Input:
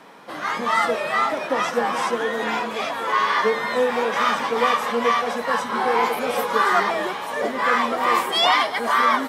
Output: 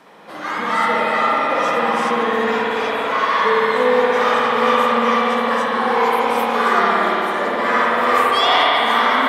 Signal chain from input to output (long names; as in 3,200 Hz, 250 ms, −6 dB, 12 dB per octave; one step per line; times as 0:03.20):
spring reverb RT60 3.5 s, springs 56 ms, chirp 20 ms, DRR −5.5 dB
level −2 dB